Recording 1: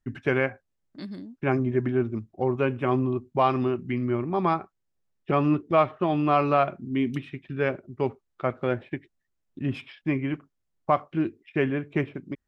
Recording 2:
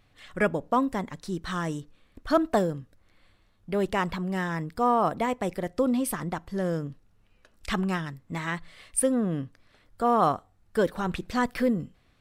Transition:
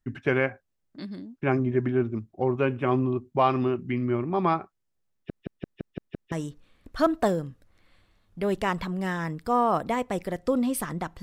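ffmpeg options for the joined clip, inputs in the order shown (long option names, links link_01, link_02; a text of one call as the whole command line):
ffmpeg -i cue0.wav -i cue1.wav -filter_complex "[0:a]apad=whole_dur=11.22,atrim=end=11.22,asplit=7[link_01][link_02][link_03][link_04][link_05][link_06][link_07];[link_01]atrim=end=5.302[link_08];[link_02]atrim=start=5.128:end=5.302[link_09];[link_03]atrim=start=5.128:end=5.302[link_10];[link_04]atrim=start=5.128:end=5.302[link_11];[link_05]atrim=start=5.128:end=5.302[link_12];[link_06]atrim=start=5.128:end=5.302[link_13];[link_07]atrim=start=5.128:end=5.302[link_14];[1:a]atrim=start=1.628:end=6.53[link_15];[link_08][link_09]acrossfade=duration=0.004:curve1=hsin:curve2=hsin[link_16];[link_16][link_10]acrossfade=duration=0.004:curve1=hsin:curve2=hsin[link_17];[link_17][link_11]acrossfade=duration=0.004:curve1=hsin:curve2=hsin[link_18];[link_18][link_12]acrossfade=duration=0.004:curve1=hsin:curve2=hsin[link_19];[link_19][link_13]acrossfade=duration=0.004:curve1=hsin:curve2=hsin[link_20];[link_20][link_14]acrossfade=duration=0.004:curve1=hsin:curve2=hsin[link_21];[link_21][link_15]acrossfade=duration=0.004:curve1=hsin:curve2=hsin" out.wav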